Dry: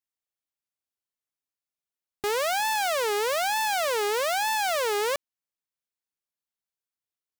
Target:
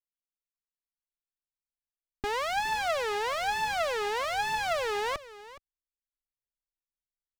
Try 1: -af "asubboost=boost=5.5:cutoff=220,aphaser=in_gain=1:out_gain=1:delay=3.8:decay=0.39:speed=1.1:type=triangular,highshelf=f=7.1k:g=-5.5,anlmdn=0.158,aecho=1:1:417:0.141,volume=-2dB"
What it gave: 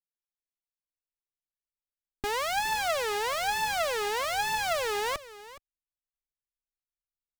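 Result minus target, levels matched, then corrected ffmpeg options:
8000 Hz band +5.0 dB
-af "asubboost=boost=5.5:cutoff=220,aphaser=in_gain=1:out_gain=1:delay=3.8:decay=0.39:speed=1.1:type=triangular,highshelf=f=7.1k:g=-17,anlmdn=0.158,aecho=1:1:417:0.141,volume=-2dB"

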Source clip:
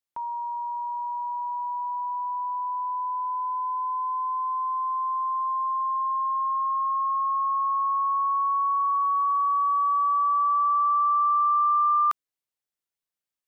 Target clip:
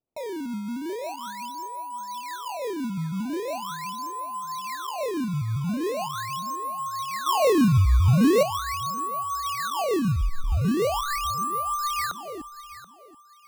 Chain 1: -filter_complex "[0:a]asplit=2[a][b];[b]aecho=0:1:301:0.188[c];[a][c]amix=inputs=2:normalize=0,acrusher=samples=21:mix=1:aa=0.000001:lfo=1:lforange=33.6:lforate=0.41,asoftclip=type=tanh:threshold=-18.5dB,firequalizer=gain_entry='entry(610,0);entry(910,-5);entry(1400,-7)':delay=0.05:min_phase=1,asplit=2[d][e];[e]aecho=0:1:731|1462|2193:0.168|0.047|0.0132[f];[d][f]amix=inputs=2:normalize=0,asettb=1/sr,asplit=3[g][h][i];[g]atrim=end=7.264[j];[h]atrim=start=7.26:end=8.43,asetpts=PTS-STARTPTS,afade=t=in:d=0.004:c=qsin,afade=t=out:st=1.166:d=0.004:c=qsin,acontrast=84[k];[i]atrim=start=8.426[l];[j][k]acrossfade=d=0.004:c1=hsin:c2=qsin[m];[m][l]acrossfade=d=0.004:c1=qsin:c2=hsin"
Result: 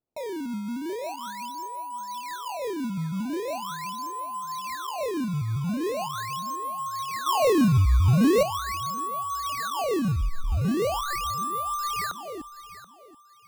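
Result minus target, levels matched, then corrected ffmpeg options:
soft clip: distortion +21 dB
-filter_complex "[0:a]asplit=2[a][b];[b]aecho=0:1:301:0.188[c];[a][c]amix=inputs=2:normalize=0,acrusher=samples=21:mix=1:aa=0.000001:lfo=1:lforange=33.6:lforate=0.41,asoftclip=type=tanh:threshold=-7dB,firequalizer=gain_entry='entry(610,0);entry(910,-5);entry(1400,-7)':delay=0.05:min_phase=1,asplit=2[d][e];[e]aecho=0:1:731|1462|2193:0.168|0.047|0.0132[f];[d][f]amix=inputs=2:normalize=0,asettb=1/sr,asplit=3[g][h][i];[g]atrim=end=7.264[j];[h]atrim=start=7.26:end=8.43,asetpts=PTS-STARTPTS,afade=t=in:d=0.004:c=qsin,afade=t=out:st=1.166:d=0.004:c=qsin,acontrast=84[k];[i]atrim=start=8.426[l];[j][k]acrossfade=d=0.004:c1=hsin:c2=qsin[m];[m][l]acrossfade=d=0.004:c1=qsin:c2=hsin"

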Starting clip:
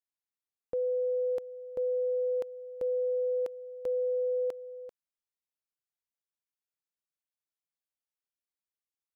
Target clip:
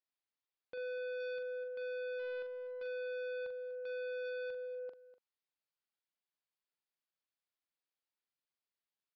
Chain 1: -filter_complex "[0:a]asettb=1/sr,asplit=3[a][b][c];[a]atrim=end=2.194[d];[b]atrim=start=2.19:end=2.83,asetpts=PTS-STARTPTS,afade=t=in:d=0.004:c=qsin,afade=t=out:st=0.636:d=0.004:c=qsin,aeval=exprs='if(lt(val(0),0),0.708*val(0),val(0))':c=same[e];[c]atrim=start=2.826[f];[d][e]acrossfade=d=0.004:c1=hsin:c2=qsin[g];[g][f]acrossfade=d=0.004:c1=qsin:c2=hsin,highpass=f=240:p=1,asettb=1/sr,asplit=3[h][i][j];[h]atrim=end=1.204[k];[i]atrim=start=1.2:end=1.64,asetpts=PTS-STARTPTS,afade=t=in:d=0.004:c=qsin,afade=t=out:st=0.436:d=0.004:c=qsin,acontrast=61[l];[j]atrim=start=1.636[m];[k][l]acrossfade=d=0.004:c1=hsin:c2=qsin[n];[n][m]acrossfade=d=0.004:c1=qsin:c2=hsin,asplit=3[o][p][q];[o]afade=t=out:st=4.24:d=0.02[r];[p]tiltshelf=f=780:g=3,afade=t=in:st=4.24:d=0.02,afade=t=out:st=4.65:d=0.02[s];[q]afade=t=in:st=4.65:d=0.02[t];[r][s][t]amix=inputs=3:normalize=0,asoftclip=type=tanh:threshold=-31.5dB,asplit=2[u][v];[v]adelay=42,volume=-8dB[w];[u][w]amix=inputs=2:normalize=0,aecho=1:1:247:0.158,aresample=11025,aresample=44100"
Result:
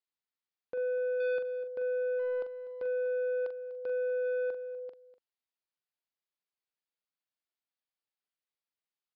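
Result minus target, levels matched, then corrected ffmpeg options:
soft clip: distortion -6 dB
-filter_complex "[0:a]asettb=1/sr,asplit=3[a][b][c];[a]atrim=end=2.194[d];[b]atrim=start=2.19:end=2.83,asetpts=PTS-STARTPTS,afade=t=in:d=0.004:c=qsin,afade=t=out:st=0.636:d=0.004:c=qsin,aeval=exprs='if(lt(val(0),0),0.708*val(0),val(0))':c=same[e];[c]atrim=start=2.826[f];[d][e]acrossfade=d=0.004:c1=hsin:c2=qsin[g];[g][f]acrossfade=d=0.004:c1=qsin:c2=hsin,highpass=f=240:p=1,asettb=1/sr,asplit=3[h][i][j];[h]atrim=end=1.204[k];[i]atrim=start=1.2:end=1.64,asetpts=PTS-STARTPTS,afade=t=in:d=0.004:c=qsin,afade=t=out:st=0.436:d=0.004:c=qsin,acontrast=61[l];[j]atrim=start=1.636[m];[k][l]acrossfade=d=0.004:c1=hsin:c2=qsin[n];[n][m]acrossfade=d=0.004:c1=qsin:c2=hsin,asplit=3[o][p][q];[o]afade=t=out:st=4.24:d=0.02[r];[p]tiltshelf=f=780:g=3,afade=t=in:st=4.24:d=0.02,afade=t=out:st=4.65:d=0.02[s];[q]afade=t=in:st=4.65:d=0.02[t];[r][s][t]amix=inputs=3:normalize=0,asoftclip=type=tanh:threshold=-42.5dB,asplit=2[u][v];[v]adelay=42,volume=-8dB[w];[u][w]amix=inputs=2:normalize=0,aecho=1:1:247:0.158,aresample=11025,aresample=44100"

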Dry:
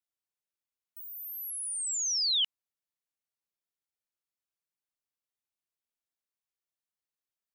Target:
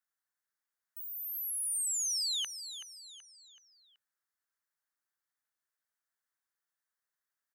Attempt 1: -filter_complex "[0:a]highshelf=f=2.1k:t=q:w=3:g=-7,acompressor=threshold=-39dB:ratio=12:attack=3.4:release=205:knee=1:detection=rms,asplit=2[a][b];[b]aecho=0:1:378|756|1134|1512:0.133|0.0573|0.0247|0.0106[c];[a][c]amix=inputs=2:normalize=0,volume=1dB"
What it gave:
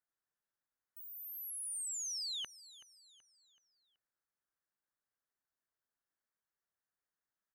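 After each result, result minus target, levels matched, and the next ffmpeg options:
1000 Hz band +5.0 dB; echo-to-direct -6.5 dB
-filter_complex "[0:a]highshelf=f=2.1k:t=q:w=3:g=-7,acompressor=threshold=-39dB:ratio=12:attack=3.4:release=205:knee=1:detection=rms,tiltshelf=f=870:g=-7.5,asplit=2[a][b];[b]aecho=0:1:378|756|1134|1512:0.133|0.0573|0.0247|0.0106[c];[a][c]amix=inputs=2:normalize=0,volume=1dB"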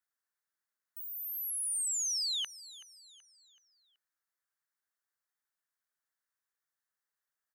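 echo-to-direct -6.5 dB
-filter_complex "[0:a]highshelf=f=2.1k:t=q:w=3:g=-7,acompressor=threshold=-39dB:ratio=12:attack=3.4:release=205:knee=1:detection=rms,tiltshelf=f=870:g=-7.5,asplit=2[a][b];[b]aecho=0:1:378|756|1134|1512:0.282|0.121|0.0521|0.0224[c];[a][c]amix=inputs=2:normalize=0,volume=1dB"

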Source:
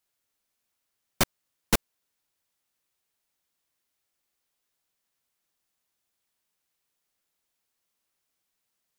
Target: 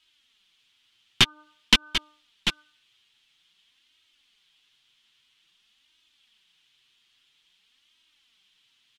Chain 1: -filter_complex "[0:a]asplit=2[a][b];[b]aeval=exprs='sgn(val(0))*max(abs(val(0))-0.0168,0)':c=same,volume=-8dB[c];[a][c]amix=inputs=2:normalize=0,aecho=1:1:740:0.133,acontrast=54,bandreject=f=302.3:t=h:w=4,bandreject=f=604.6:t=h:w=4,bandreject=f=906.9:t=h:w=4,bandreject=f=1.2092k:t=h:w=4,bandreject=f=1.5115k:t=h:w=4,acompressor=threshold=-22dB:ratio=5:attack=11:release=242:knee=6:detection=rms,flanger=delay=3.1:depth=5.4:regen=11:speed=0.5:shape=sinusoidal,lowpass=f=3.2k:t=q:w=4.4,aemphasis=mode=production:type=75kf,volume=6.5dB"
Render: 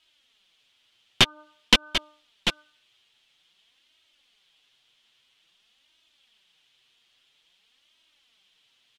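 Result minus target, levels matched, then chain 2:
500 Hz band +6.5 dB
-filter_complex "[0:a]asplit=2[a][b];[b]aeval=exprs='sgn(val(0))*max(abs(val(0))-0.0168,0)':c=same,volume=-8dB[c];[a][c]amix=inputs=2:normalize=0,aecho=1:1:740:0.133,acontrast=54,bandreject=f=302.3:t=h:w=4,bandreject=f=604.6:t=h:w=4,bandreject=f=906.9:t=h:w=4,bandreject=f=1.2092k:t=h:w=4,bandreject=f=1.5115k:t=h:w=4,acompressor=threshold=-22dB:ratio=5:attack=11:release=242:knee=6:detection=rms,equalizer=f=580:w=1.7:g=-11.5,flanger=delay=3.1:depth=5.4:regen=11:speed=0.5:shape=sinusoidal,lowpass=f=3.2k:t=q:w=4.4,aemphasis=mode=production:type=75kf,volume=6.5dB"

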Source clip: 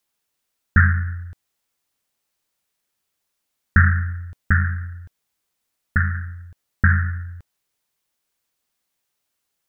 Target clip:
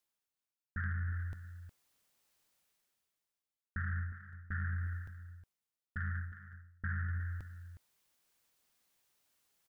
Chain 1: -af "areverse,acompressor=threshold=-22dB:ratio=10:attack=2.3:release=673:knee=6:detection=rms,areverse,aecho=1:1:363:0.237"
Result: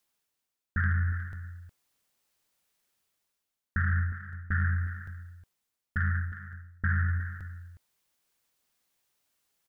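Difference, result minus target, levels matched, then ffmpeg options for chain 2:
compressor: peak gain reduction -10 dB
-af "areverse,acompressor=threshold=-33dB:ratio=10:attack=2.3:release=673:knee=6:detection=rms,areverse,aecho=1:1:363:0.237"

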